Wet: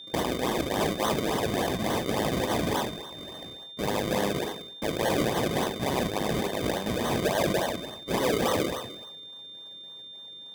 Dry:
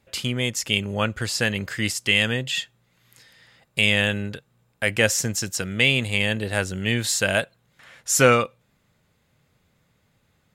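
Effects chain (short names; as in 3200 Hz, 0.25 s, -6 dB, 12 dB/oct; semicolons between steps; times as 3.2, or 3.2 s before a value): spectral trails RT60 0.96 s; Bessel high-pass 300 Hz, order 6; notches 60/120/180/240/300/360/420/480/540 Hz; reverse; compressor 5:1, threshold -30 dBFS, peak gain reduction 17.5 dB; reverse; decimation with a swept rate 35×, swing 100% 3.5 Hz; whine 3600 Hz -50 dBFS; in parallel at -7.5 dB: sine folder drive 8 dB, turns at -17 dBFS; on the sum: notch comb 1400 Hz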